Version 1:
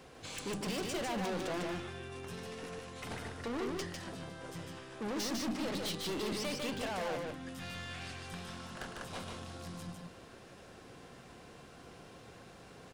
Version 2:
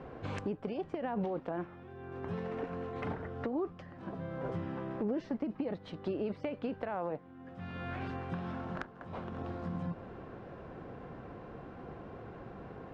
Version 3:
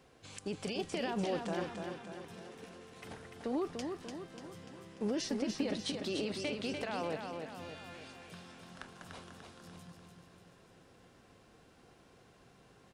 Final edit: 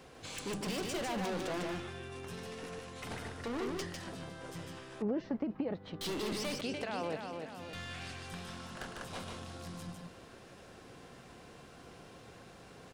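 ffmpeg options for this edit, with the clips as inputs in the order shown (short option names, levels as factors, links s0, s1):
-filter_complex "[0:a]asplit=3[s0][s1][s2];[s0]atrim=end=5.022[s3];[1:a]atrim=start=5.018:end=6.012[s4];[s1]atrim=start=6.008:end=6.612[s5];[2:a]atrim=start=6.608:end=7.732[s6];[s2]atrim=start=7.728[s7];[s3][s4]acrossfade=d=0.004:c1=hsin:c2=hsin[s8];[s8][s5]acrossfade=d=0.004:c1=hsin:c2=hsin[s9];[s9][s6]acrossfade=d=0.004:c1=hsin:c2=hsin[s10];[s10][s7]acrossfade=d=0.004:c1=hsin:c2=hsin"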